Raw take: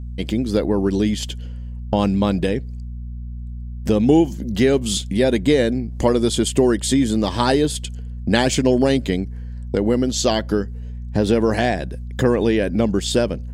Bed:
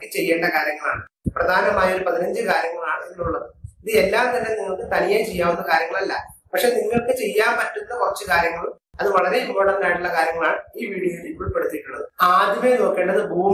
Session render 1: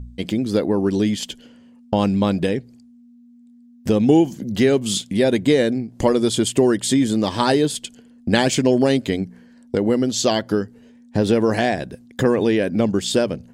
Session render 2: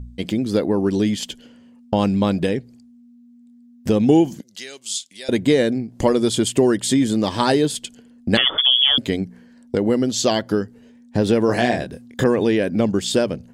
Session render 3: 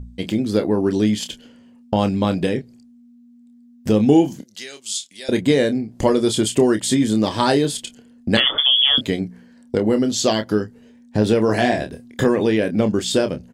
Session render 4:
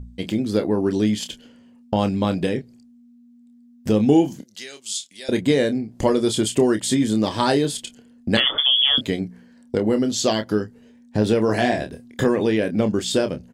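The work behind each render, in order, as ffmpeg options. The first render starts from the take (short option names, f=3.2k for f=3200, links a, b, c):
-af "bandreject=f=60:t=h:w=4,bandreject=f=120:t=h:w=4,bandreject=f=180:t=h:w=4"
-filter_complex "[0:a]asettb=1/sr,asplit=3[a][b][c];[a]atrim=end=4.414[d];[b]atrim=start=4.41:end=5.29,asetpts=PTS-STARTPTS,afade=t=in:d=0.004:c=qsin,afade=t=out:st=0.876:d=0.004:c=qsin,bandpass=f=6.4k:t=q:w=1[e];[c]atrim=start=5.286[f];[d][e]acrossfade=d=0.004:c1=hsin:c2=qsin[g];[g][f]acrossfade=d=0.004:c1=qsin:c2=hsin,asettb=1/sr,asplit=3[h][i][j];[h]atrim=end=8.374[k];[i]atrim=start=8.37:end=8.98,asetpts=PTS-STARTPTS,afade=t=in:d=0.004:c=qsin,afade=t=out:st=0.606:d=0.004:c=qsin,lowpass=f=3.1k:t=q:w=0.5098,lowpass=f=3.1k:t=q:w=0.6013,lowpass=f=3.1k:t=q:w=0.9,lowpass=f=3.1k:t=q:w=2.563,afreqshift=-3600[l];[j]atrim=start=8.976[m];[k][l]acrossfade=d=0.004:c1=hsin:c2=qsin[n];[n][m]acrossfade=d=0.004:c1=qsin:c2=hsin,asettb=1/sr,asplit=3[o][p][q];[o]atrim=end=11.464[r];[p]atrim=start=11.46:end=12.24,asetpts=PTS-STARTPTS,afade=t=in:d=0.004:c=qsin,afade=t=out:st=0.776:d=0.004:c=qsin,asplit=2[s][t];[t]adelay=25,volume=-5dB[u];[s][u]amix=inputs=2:normalize=0,atrim=end_sample=34398[v];[q]atrim=start=12.236[w];[r][v]acrossfade=d=0.004:c1=hsin:c2=qsin[x];[x][w]acrossfade=d=0.004:c1=qsin:c2=hsin"
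-filter_complex "[0:a]asplit=2[a][b];[b]adelay=28,volume=-9dB[c];[a][c]amix=inputs=2:normalize=0"
-af "volume=-2dB"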